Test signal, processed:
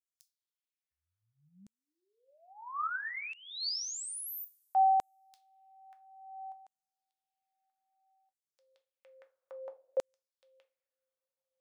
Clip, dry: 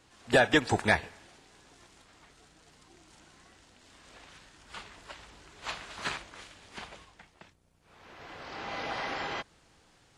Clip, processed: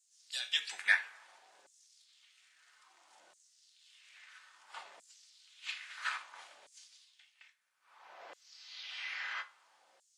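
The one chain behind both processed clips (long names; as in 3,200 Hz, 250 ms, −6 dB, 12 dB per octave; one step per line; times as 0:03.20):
coupled-rooms reverb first 0.26 s, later 1.7 s, from −27 dB, DRR 6 dB
auto-filter high-pass saw down 0.6 Hz 540–7,600 Hz
level −7.5 dB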